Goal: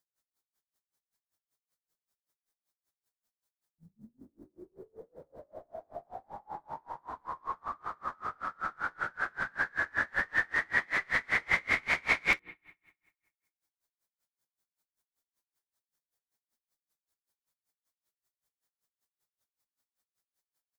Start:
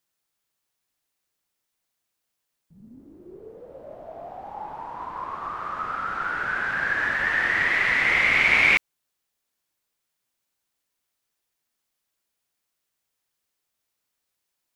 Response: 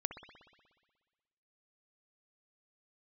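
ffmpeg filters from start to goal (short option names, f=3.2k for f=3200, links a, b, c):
-filter_complex "[0:a]equalizer=f=2.7k:t=o:w=0.54:g=-9.5,bandreject=f=60:t=h:w=6,bandreject=f=120:t=h:w=6,bandreject=f=180:t=h:w=6,bandreject=f=240:t=h:w=6,bandreject=f=300:t=h:w=6,bandreject=f=360:t=h:w=6,bandreject=f=420:t=h:w=6,bandreject=f=480:t=h:w=6,atempo=0.71,aecho=1:1:48|61:0.447|0.531,asplit=2[a][b];[1:a]atrim=start_sample=2205[c];[b][c]afir=irnorm=-1:irlink=0,volume=-11dB[d];[a][d]amix=inputs=2:normalize=0,aeval=exprs='val(0)*pow(10,-33*(0.5-0.5*cos(2*PI*5.2*n/s))/20)':c=same,volume=-4dB"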